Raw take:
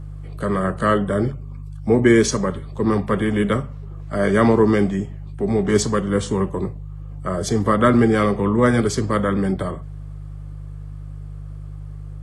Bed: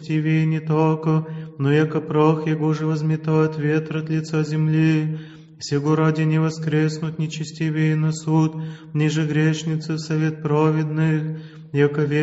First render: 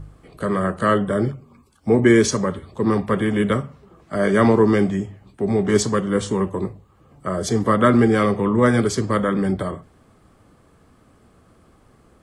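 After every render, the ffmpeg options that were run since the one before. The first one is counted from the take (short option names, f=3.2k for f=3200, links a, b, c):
-af "bandreject=f=50:t=h:w=4,bandreject=f=100:t=h:w=4,bandreject=f=150:t=h:w=4"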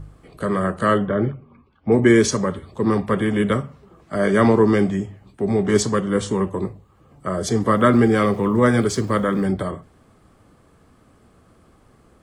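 -filter_complex "[0:a]asettb=1/sr,asplit=3[a][b][c];[a]atrim=end=1.064[d];[b]atrim=start=1.06:end=1.92,asetpts=PTS-STARTPTS,afade=t=in:d=0.004:c=qsin,afade=t=out:st=0.856:d=0.004:c=qsin,lowpass=f=3.1k:w=0.5412,lowpass=f=3.1k:w=1.3066[e];[c]atrim=start=1.916[f];[d][e]acrossfade=d=0.004:c1=hsin:c2=qsin[g];[g][f]acrossfade=d=0.004:c1=qsin:c2=hsin,asettb=1/sr,asplit=3[h][i][j];[h]atrim=end=7.714[k];[i]atrim=start=7.71:end=9.46,asetpts=PTS-STARTPTS,afade=t=in:d=0.004:c=qsin,afade=t=out:st=1.746:d=0.004:c=qsin,aeval=exprs='val(0)*gte(abs(val(0)),0.0075)':c=same[l];[j]atrim=start=9.456[m];[k][l]acrossfade=d=0.004:c1=hsin:c2=qsin[n];[n][m]acrossfade=d=0.004:c1=qsin:c2=hsin"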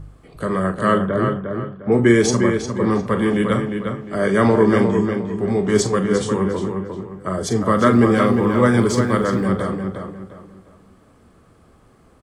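-filter_complex "[0:a]asplit=2[a][b];[b]adelay=42,volume=-11dB[c];[a][c]amix=inputs=2:normalize=0,asplit=2[d][e];[e]adelay=354,lowpass=f=3.7k:p=1,volume=-5.5dB,asplit=2[f][g];[g]adelay=354,lowpass=f=3.7k:p=1,volume=0.33,asplit=2[h][i];[i]adelay=354,lowpass=f=3.7k:p=1,volume=0.33,asplit=2[j][k];[k]adelay=354,lowpass=f=3.7k:p=1,volume=0.33[l];[f][h][j][l]amix=inputs=4:normalize=0[m];[d][m]amix=inputs=2:normalize=0"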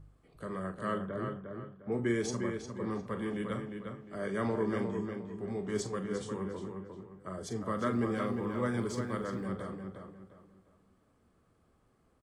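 -af "volume=-17.5dB"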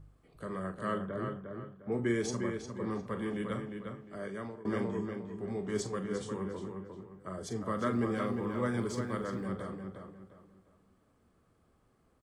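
-filter_complex "[0:a]asplit=2[a][b];[a]atrim=end=4.65,asetpts=PTS-STARTPTS,afade=t=out:st=3.98:d=0.67:silence=0.0749894[c];[b]atrim=start=4.65,asetpts=PTS-STARTPTS,afade=t=in:d=0.004:c=hsin:silence=0.0749894[d];[c][d]concat=n=2:v=0:a=1"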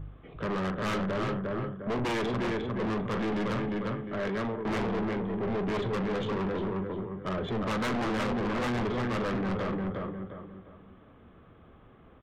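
-af "aresample=8000,aeval=exprs='0.112*sin(PI/2*3.55*val(0)/0.112)':c=same,aresample=44100,aeval=exprs='(tanh(25.1*val(0)+0.2)-tanh(0.2))/25.1':c=same"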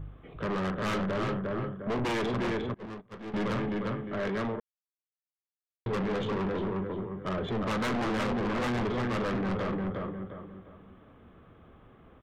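-filter_complex "[0:a]asettb=1/sr,asplit=3[a][b][c];[a]atrim=end=2.744[d];[b]atrim=start=2.74:end=3.34,asetpts=PTS-STARTPTS,afade=t=in:d=0.004:c=qsin,afade=t=out:st=0.596:d=0.004:c=qsin,agate=range=-29dB:threshold=-29dB:ratio=16:release=100:detection=peak[e];[c]atrim=start=3.336[f];[d][e]acrossfade=d=0.004:c1=hsin:c2=qsin[g];[g][f]acrossfade=d=0.004:c1=qsin:c2=hsin,asplit=3[h][i][j];[h]atrim=end=4.6,asetpts=PTS-STARTPTS,afade=t=out:st=4.596:d=0.004:c=hsin[k];[i]atrim=start=4.6:end=5.86,asetpts=PTS-STARTPTS,volume=0[l];[j]atrim=start=5.86,asetpts=PTS-STARTPTS,afade=t=in:d=0.004:c=hsin[m];[k][l][m]concat=n=3:v=0:a=1"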